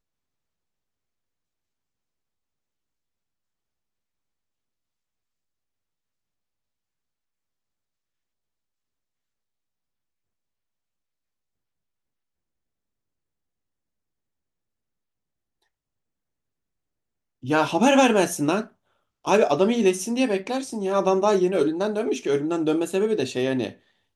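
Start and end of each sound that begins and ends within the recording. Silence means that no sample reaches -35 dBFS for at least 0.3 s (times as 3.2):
17.44–18.64
19.25–23.71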